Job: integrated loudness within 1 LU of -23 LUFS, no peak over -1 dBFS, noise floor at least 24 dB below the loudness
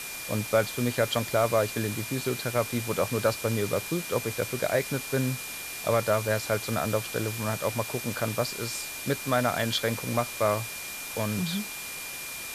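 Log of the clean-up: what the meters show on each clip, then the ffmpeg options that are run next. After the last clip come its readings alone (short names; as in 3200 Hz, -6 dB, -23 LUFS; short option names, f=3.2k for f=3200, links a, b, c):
steady tone 2400 Hz; tone level -40 dBFS; noise floor -38 dBFS; noise floor target -53 dBFS; loudness -28.5 LUFS; peak -11.5 dBFS; loudness target -23.0 LUFS
-> -af "bandreject=f=2.4k:w=30"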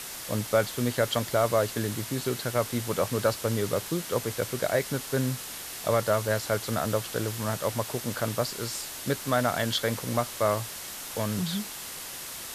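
steady tone none; noise floor -39 dBFS; noise floor target -53 dBFS
-> -af "afftdn=nr=14:nf=-39"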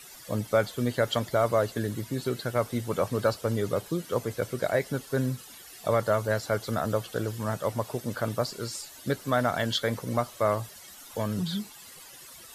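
noise floor -48 dBFS; noise floor target -53 dBFS
-> -af "afftdn=nr=6:nf=-48"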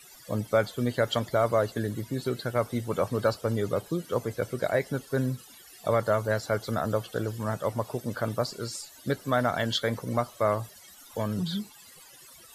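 noise floor -52 dBFS; noise floor target -54 dBFS
-> -af "afftdn=nr=6:nf=-52"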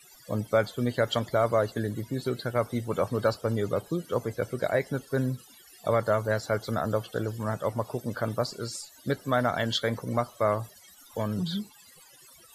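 noise floor -55 dBFS; loudness -29.5 LUFS; peak -12.0 dBFS; loudness target -23.0 LUFS
-> -af "volume=6.5dB"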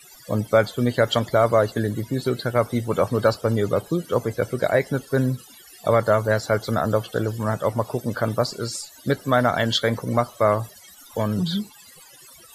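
loudness -23.0 LUFS; peak -5.5 dBFS; noise floor -48 dBFS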